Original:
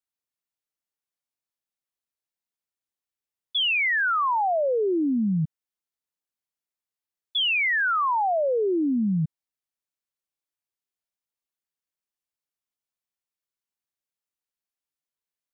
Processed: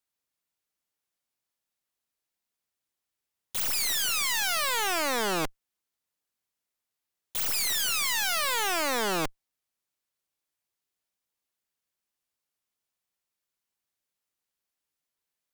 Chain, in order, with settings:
harmonic generator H 8 −13 dB, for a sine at −19.5 dBFS
wrap-around overflow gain 28 dB
level +5 dB

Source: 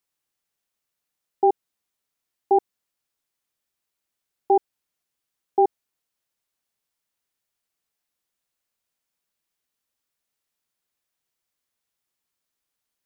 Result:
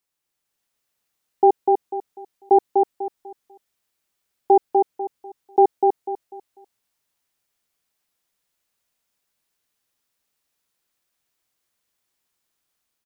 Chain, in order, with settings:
automatic gain control gain up to 4 dB
repeating echo 247 ms, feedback 29%, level −3.5 dB

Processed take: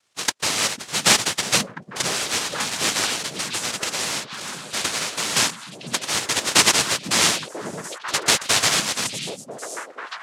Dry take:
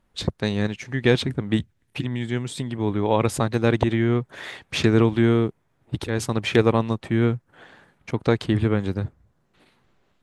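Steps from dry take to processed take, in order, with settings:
0:03.04–0:05.36: downward compressor, threshold −24 dBFS, peak gain reduction 12 dB
cochlear-implant simulation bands 1
echo through a band-pass that steps 495 ms, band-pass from 180 Hz, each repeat 1.4 octaves, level −1 dB
level +1.5 dB

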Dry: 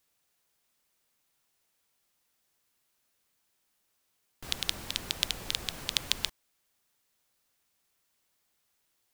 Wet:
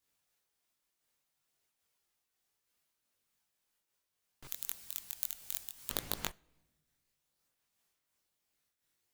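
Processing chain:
stylus tracing distortion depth 0.25 ms
multi-voice chorus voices 2, 0.32 Hz, delay 21 ms, depth 1.5 ms
0:04.47–0:05.90: first-order pre-emphasis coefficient 0.9
on a send at −22.5 dB: convolution reverb RT60 1.1 s, pre-delay 7 ms
on the sum: amplitude modulation by smooth noise, depth 65%
level −1 dB

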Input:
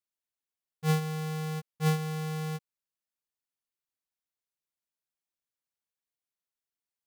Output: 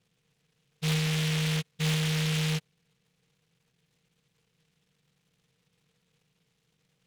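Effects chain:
compressor on every frequency bin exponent 0.6
inverse Chebyshev low-pass filter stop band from 2,000 Hz, stop band 50 dB
in parallel at −0.5 dB: brickwall limiter −31.5 dBFS, peak gain reduction 11.5 dB
on the sum: soft clipping −24.5 dBFS, distortion −18 dB
short delay modulated by noise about 2,700 Hz, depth 0.39 ms

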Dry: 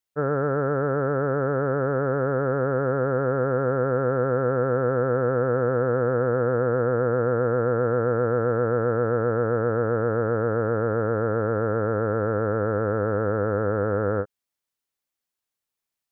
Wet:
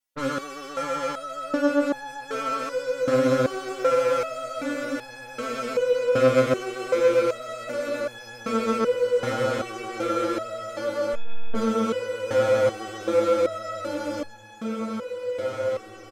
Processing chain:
comb filter 3.6 ms, depth 78%
in parallel at −2 dB: brickwall limiter −21 dBFS, peak gain reduction 9.5 dB
on the sum: sine wavefolder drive 6 dB, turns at −9 dBFS
harmonic generator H 2 −22 dB, 3 −18 dB, 6 −17 dB, 8 −23 dB, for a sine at −8.5 dBFS
on a send: feedback delay with all-pass diffusion 1,878 ms, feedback 55%, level −8 dB
0:11.13–0:11.55: on the sum: one-pitch LPC vocoder at 8 kHz 230 Hz
step-sequenced resonator 2.6 Hz 130–850 Hz

